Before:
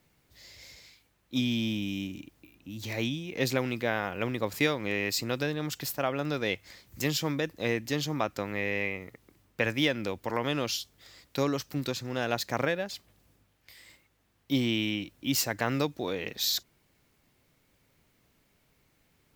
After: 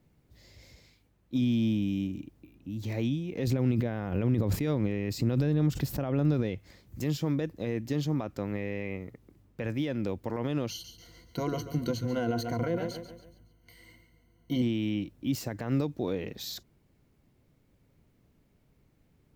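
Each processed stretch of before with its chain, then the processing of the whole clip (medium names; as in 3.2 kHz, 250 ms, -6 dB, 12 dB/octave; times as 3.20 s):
3.47–6.59 s: bass shelf 250 Hz +8.5 dB + swell ahead of each attack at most 78 dB/s
10.70–14.62 s: rippled EQ curve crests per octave 1.9, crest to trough 17 dB + feedback delay 140 ms, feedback 44%, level -12 dB
whole clip: peak limiter -20.5 dBFS; tilt shelf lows +7.5 dB, about 650 Hz; trim -1.5 dB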